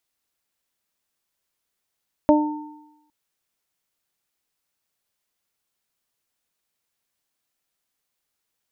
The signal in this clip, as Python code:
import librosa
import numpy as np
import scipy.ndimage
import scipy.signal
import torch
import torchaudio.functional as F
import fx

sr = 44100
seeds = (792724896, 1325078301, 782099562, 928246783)

y = fx.additive(sr, length_s=0.81, hz=300.0, level_db=-12, upper_db=(1.0, -6.5), decay_s=0.88, upper_decays_s=(0.28, 0.99))